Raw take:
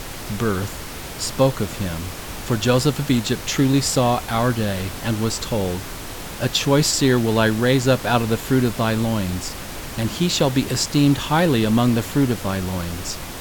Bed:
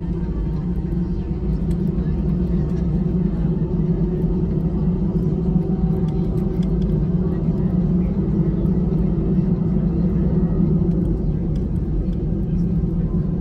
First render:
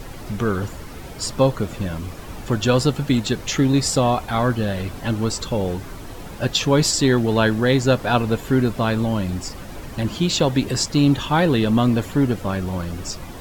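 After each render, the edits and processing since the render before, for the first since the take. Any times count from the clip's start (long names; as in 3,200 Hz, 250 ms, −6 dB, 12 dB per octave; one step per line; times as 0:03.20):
broadband denoise 10 dB, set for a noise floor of −33 dBFS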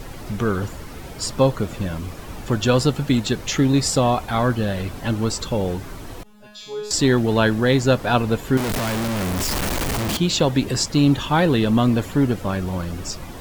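0:06.23–0:06.91: tuned comb filter 210 Hz, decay 0.75 s, mix 100%
0:08.57–0:10.17: sign of each sample alone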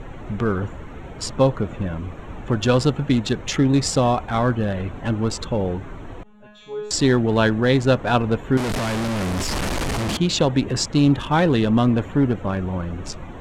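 adaptive Wiener filter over 9 samples
low-pass filter 8,900 Hz 12 dB per octave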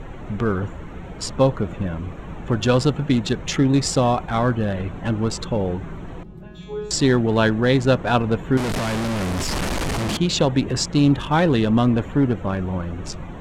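mix in bed −19.5 dB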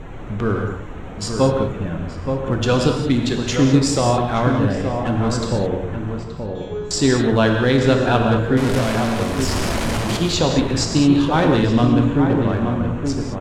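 slap from a distant wall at 150 metres, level −6 dB
reverb whose tail is shaped and stops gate 240 ms flat, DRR 2.5 dB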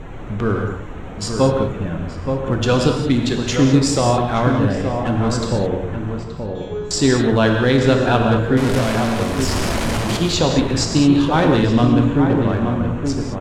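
level +1 dB
brickwall limiter −3 dBFS, peak gain reduction 1.5 dB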